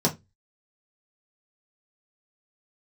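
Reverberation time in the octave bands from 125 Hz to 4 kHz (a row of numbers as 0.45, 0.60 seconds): 0.35, 0.30, 0.20, 0.15, 0.15, 0.15 seconds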